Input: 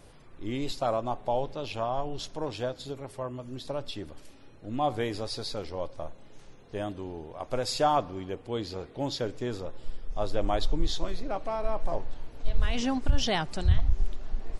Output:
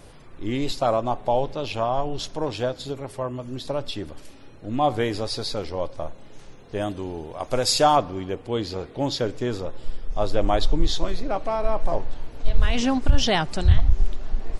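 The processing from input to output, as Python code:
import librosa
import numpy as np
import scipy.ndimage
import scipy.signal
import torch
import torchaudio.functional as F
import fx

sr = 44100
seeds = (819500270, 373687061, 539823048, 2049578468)

y = fx.high_shelf(x, sr, hz=fx.line((6.8, 6100.0), (7.95, 3900.0)), db=8.0, at=(6.8, 7.95), fade=0.02)
y = fx.doppler_dist(y, sr, depth_ms=0.22)
y = F.gain(torch.from_numpy(y), 6.5).numpy()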